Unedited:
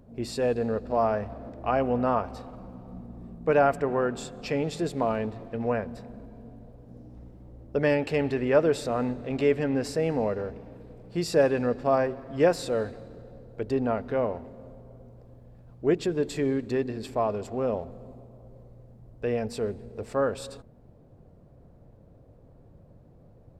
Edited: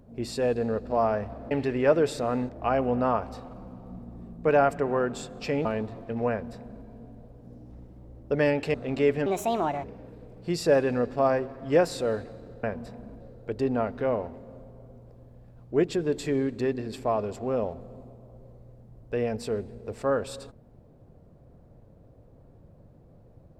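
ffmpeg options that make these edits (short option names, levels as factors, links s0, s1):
-filter_complex "[0:a]asplit=9[s0][s1][s2][s3][s4][s5][s6][s7][s8];[s0]atrim=end=1.512[s9];[s1]atrim=start=8.178:end=9.162[s10];[s2]atrim=start=1.508:end=4.672[s11];[s3]atrim=start=5.088:end=8.182[s12];[s4]atrim=start=9.158:end=9.684[s13];[s5]atrim=start=9.68:end=10.52,asetpts=PTS-STARTPTS,asetrate=63504,aresample=44100[s14];[s6]atrim=start=10.516:end=13.312[s15];[s7]atrim=start=5.738:end=6.312[s16];[s8]atrim=start=13.308[s17];[s9][s10]acrossfade=d=0.004:c1=hsin:c2=hsin[s18];[s18][s11]acrossfade=d=0.004:c1=hsin:c2=hsin[s19];[s19][s12]acrossfade=d=0.004:c1=hsin:c2=hsin[s20];[s20][s13]acrossfade=d=0.004:c1=hsin:c2=hsin[s21];[s21][s14]acrossfade=d=0.004:c1=hsin:c2=hsin[s22];[s22][s15]acrossfade=d=0.004:c1=hsin:c2=hsin[s23];[s23][s16]acrossfade=d=0.004:c1=hsin:c2=hsin[s24];[s24][s17]acrossfade=d=0.004:c1=hsin:c2=hsin"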